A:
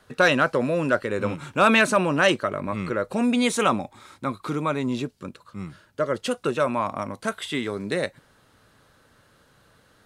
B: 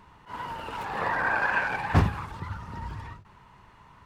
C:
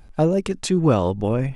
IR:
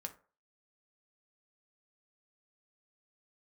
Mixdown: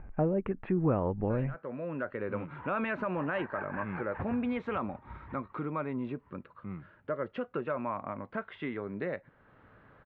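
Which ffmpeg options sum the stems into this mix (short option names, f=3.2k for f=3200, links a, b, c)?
-filter_complex "[0:a]alimiter=limit=-12.5dB:level=0:latency=1:release=56,adelay=1100,volume=0dB,asplit=2[a][b];[b]volume=-19.5dB[c];[1:a]tremolo=f=5.2:d=0.96,adelay=2250,volume=-3dB,asplit=2[d][e];[e]volume=-8.5dB[f];[2:a]lowpass=f=2.5k:w=0.5412,lowpass=f=2.5k:w=1.3066,volume=3dB,asplit=2[g][h];[h]apad=whole_len=491730[i];[a][i]sidechaincompress=threshold=-30dB:ratio=10:attack=16:release=645[j];[3:a]atrim=start_sample=2205[k];[c][k]afir=irnorm=-1:irlink=0[l];[f]aecho=0:1:122:1[m];[j][d][g][l][m]amix=inputs=5:normalize=0,lowpass=f=2.2k:w=0.5412,lowpass=f=2.2k:w=1.3066,acompressor=threshold=-49dB:ratio=1.5"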